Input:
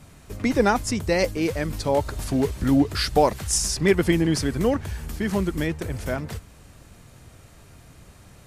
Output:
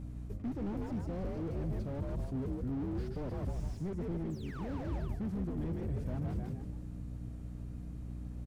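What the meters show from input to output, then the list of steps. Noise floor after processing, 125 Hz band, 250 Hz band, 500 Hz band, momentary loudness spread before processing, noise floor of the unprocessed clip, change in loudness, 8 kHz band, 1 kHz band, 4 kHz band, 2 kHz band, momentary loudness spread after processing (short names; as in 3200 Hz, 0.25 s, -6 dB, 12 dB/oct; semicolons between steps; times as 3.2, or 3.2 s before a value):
-44 dBFS, -8.5 dB, -14.0 dB, -19.0 dB, 9 LU, -50 dBFS, -15.5 dB, under -35 dB, -22.5 dB, -30.0 dB, -26.0 dB, 7 LU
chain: tilt shelf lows +9 dB, about 650 Hz; painted sound fall, 4.3–4.71, 480–8300 Hz -17 dBFS; on a send: frequency-shifting echo 0.154 s, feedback 34%, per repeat +51 Hz, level -7 dB; on the sum: hum 60 Hz, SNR 16 dB; reverse; compressor 6:1, threshold -23 dBFS, peak gain reduction 15 dB; reverse; slew limiter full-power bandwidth 14 Hz; gain -9 dB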